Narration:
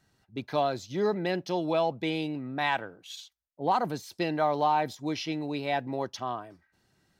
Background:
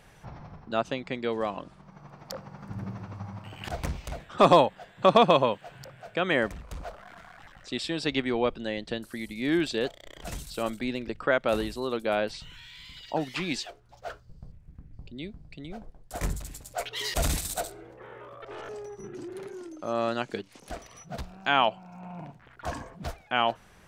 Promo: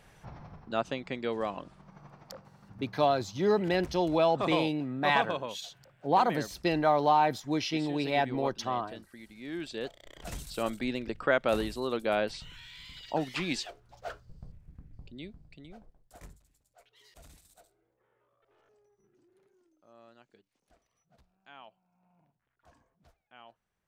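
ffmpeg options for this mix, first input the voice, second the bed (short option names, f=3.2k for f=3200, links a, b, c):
-filter_complex "[0:a]adelay=2450,volume=1.5dB[a];[1:a]volume=9dB,afade=t=out:st=2:d=0.54:silence=0.298538,afade=t=in:st=9.52:d=0.99:silence=0.251189,afade=t=out:st=14.53:d=1.87:silence=0.0446684[b];[a][b]amix=inputs=2:normalize=0"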